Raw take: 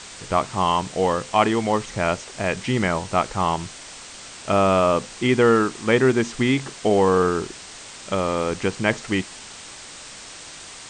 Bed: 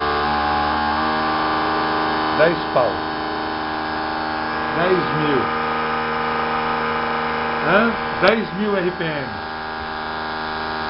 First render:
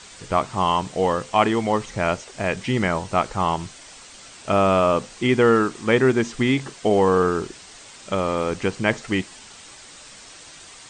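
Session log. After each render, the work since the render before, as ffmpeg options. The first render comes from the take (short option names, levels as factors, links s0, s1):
-af "afftdn=nr=6:nf=-40"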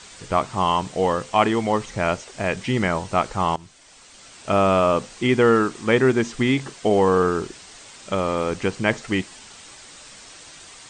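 -filter_complex "[0:a]asplit=2[s0][s1];[s0]atrim=end=3.56,asetpts=PTS-STARTPTS,afade=t=out:st=3.556:d=0.004:c=hsin:silence=0.199526[s2];[s1]atrim=start=3.56,asetpts=PTS-STARTPTS,afade=t=in:d=0.99:silence=0.199526[s3];[s2][s3]concat=n=2:v=0:a=1"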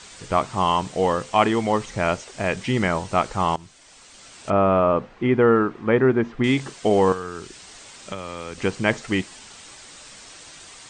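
-filter_complex "[0:a]asettb=1/sr,asplit=3[s0][s1][s2];[s0]atrim=end=4.504[s3];[s1]atrim=start=4.5:end=6.44,asetpts=PTS-STARTPTS,afade=t=in:d=0.004:c=qsin,afade=t=out:st=1.936:d=0.004:c=qsin,lowpass=1700[s4];[s2]atrim=start=6.436[s5];[s3][s4]acrossfade=d=0.004:c1=hsin:c2=qsin[s6];[s6][s5]acrossfade=d=0.004:c1=qsin:c2=hsin,asettb=1/sr,asplit=3[s7][s8][s9];[s7]atrim=end=7.124[s10];[s8]atrim=start=7.12:end=8.58,asetpts=PTS-STARTPTS,afade=t=in:d=0.004:c=qsin,afade=t=out:st=1.456:d=0.004:c=qsin,acrossover=split=110|1600[s11][s12][s13];[s11]acompressor=threshold=0.00501:ratio=4[s14];[s12]acompressor=threshold=0.0224:ratio=4[s15];[s13]acompressor=threshold=0.0141:ratio=4[s16];[s14][s15][s16]amix=inputs=3:normalize=0[s17];[s9]atrim=start=8.576[s18];[s10][s17]acrossfade=d=0.004:c1=hsin:c2=qsin[s19];[s19][s18]acrossfade=d=0.004:c1=qsin:c2=hsin"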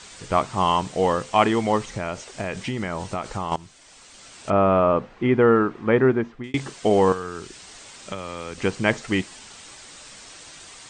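-filter_complex "[0:a]asettb=1/sr,asplit=3[s0][s1][s2];[s0]atrim=end=1.864[s3];[s1]atrim=start=1.86:end=3.52,asetpts=PTS-STARTPTS,afade=t=in:d=0.004:c=qsin,afade=t=out:st=1.656:d=0.004:c=qsin,acompressor=threshold=0.0794:ratio=10:attack=3.2:release=140:knee=1:detection=peak[s4];[s2]atrim=start=3.516[s5];[s3][s4]acrossfade=d=0.004:c1=hsin:c2=qsin[s6];[s6][s5]acrossfade=d=0.004:c1=qsin:c2=hsin,asplit=2[s7][s8];[s7]atrim=end=6.54,asetpts=PTS-STARTPTS,afade=t=out:st=6.07:d=0.47[s9];[s8]atrim=start=6.54,asetpts=PTS-STARTPTS,afade=t=in:d=0.004:c=hsin[s10];[s9][s10]concat=n=2:v=0:a=1"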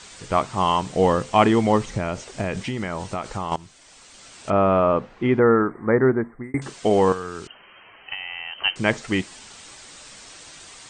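-filter_complex "[0:a]asettb=1/sr,asplit=3[s0][s1][s2];[s0]atrim=end=0.884[s3];[s1]atrim=start=0.88:end=2.63,asetpts=PTS-STARTPTS,afade=t=in:d=0.004:c=qsin,afade=t=out:st=1.746:d=0.004:c=qsin,lowshelf=f=420:g=6[s4];[s2]atrim=start=2.626[s5];[s3][s4]acrossfade=d=0.004:c1=hsin:c2=qsin[s6];[s6][s5]acrossfade=d=0.004:c1=qsin:c2=hsin,asettb=1/sr,asplit=3[s7][s8][s9];[s7]atrim=end=5.394[s10];[s8]atrim=start=5.39:end=6.62,asetpts=PTS-STARTPTS,afade=t=in:d=0.004:c=qsin,afade=t=out:st=1.226:d=0.004:c=qsin,asuperstop=centerf=4300:order=20:qfactor=0.72[s11];[s9]atrim=start=6.616[s12];[s10][s11]acrossfade=d=0.004:c1=hsin:c2=qsin[s13];[s13][s12]acrossfade=d=0.004:c1=qsin:c2=hsin,asettb=1/sr,asplit=3[s14][s15][s16];[s14]atrim=end=7.474[s17];[s15]atrim=start=7.47:end=8.76,asetpts=PTS-STARTPTS,afade=t=in:d=0.004:c=qsin,afade=t=out:st=1.286:d=0.004:c=qsin,lowpass=f=2700:t=q:w=0.5098,lowpass=f=2700:t=q:w=0.6013,lowpass=f=2700:t=q:w=0.9,lowpass=f=2700:t=q:w=2.563,afreqshift=-3200[s18];[s16]atrim=start=8.756[s19];[s17][s18]acrossfade=d=0.004:c1=hsin:c2=qsin[s20];[s20][s19]acrossfade=d=0.004:c1=qsin:c2=hsin"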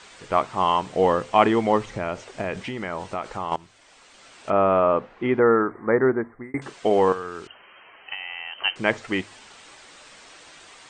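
-af "bass=f=250:g=-8,treble=f=4000:g=-9,bandreject=f=51.81:t=h:w=4,bandreject=f=103.62:t=h:w=4"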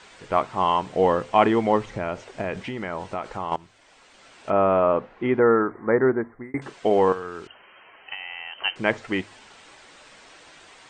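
-af "highshelf=f=4100:g=-6,bandreject=f=1200:w=25"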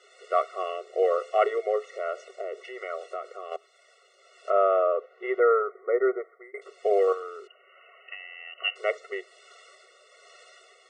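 -filter_complex "[0:a]acrossover=split=430[s0][s1];[s0]aeval=exprs='val(0)*(1-0.5/2+0.5/2*cos(2*PI*1.2*n/s))':c=same[s2];[s1]aeval=exprs='val(0)*(1-0.5/2-0.5/2*cos(2*PI*1.2*n/s))':c=same[s3];[s2][s3]amix=inputs=2:normalize=0,afftfilt=real='re*eq(mod(floor(b*sr/1024/370),2),1)':imag='im*eq(mod(floor(b*sr/1024/370),2),1)':win_size=1024:overlap=0.75"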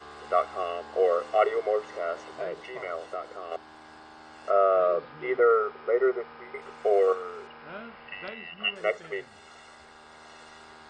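-filter_complex "[1:a]volume=0.0501[s0];[0:a][s0]amix=inputs=2:normalize=0"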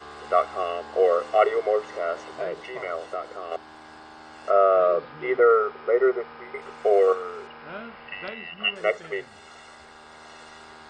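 -af "volume=1.5"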